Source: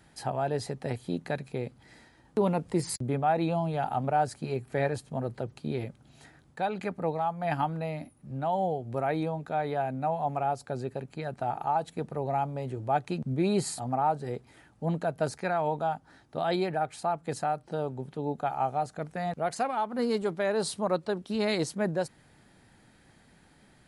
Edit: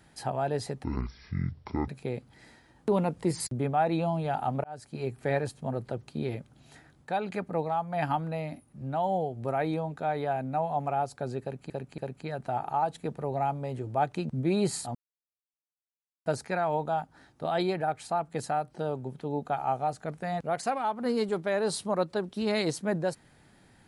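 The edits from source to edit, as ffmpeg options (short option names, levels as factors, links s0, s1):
-filter_complex "[0:a]asplit=8[s0][s1][s2][s3][s4][s5][s6][s7];[s0]atrim=end=0.844[s8];[s1]atrim=start=0.84:end=1.37,asetpts=PTS-STARTPTS,asetrate=22491,aresample=44100,atrim=end_sample=45829,asetpts=PTS-STARTPTS[s9];[s2]atrim=start=1.366:end=4.13,asetpts=PTS-STARTPTS,afade=t=out:st=2.76:d=0.004:c=hsin[s10];[s3]atrim=start=4.13:end=11.192,asetpts=PTS-STARTPTS,afade=t=in:d=0.46[s11];[s4]atrim=start=10.908:end=11.192[s12];[s5]atrim=start=10.908:end=13.88,asetpts=PTS-STARTPTS,afade=t=out:st=2.968:d=0.004:c=hsin[s13];[s6]atrim=start=13.88:end=15.19,asetpts=PTS-STARTPTS,volume=0[s14];[s7]atrim=start=15.19,asetpts=PTS-STARTPTS,afade=t=in:d=0.004:c=hsin[s15];[s8][s9]acrossfade=d=0.004:c1=hsin:c2=hsin[s16];[s10][s11]concat=n=2:v=0:a=1[s17];[s16][s17]acrossfade=d=0.004:c1=hsin:c2=hsin[s18];[s18][s12]acrossfade=d=0.004:c1=hsin:c2=hsin[s19];[s13][s14][s15]concat=n=3:v=0:a=1[s20];[s19][s20]acrossfade=d=0.004:c1=hsin:c2=hsin"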